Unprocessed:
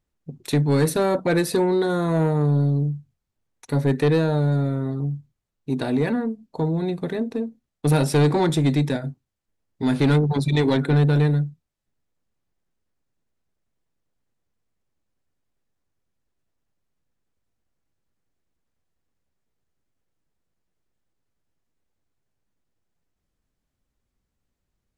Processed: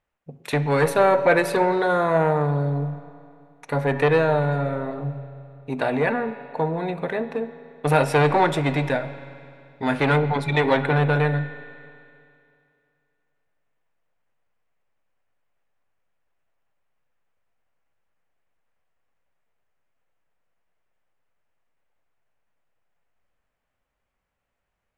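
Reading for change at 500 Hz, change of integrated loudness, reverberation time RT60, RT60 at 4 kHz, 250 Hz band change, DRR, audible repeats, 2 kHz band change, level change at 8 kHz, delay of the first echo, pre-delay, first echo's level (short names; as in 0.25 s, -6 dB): +2.5 dB, 0.0 dB, 2.5 s, 2.5 s, -4.5 dB, 11.0 dB, none, +7.5 dB, -5.5 dB, none, 7 ms, none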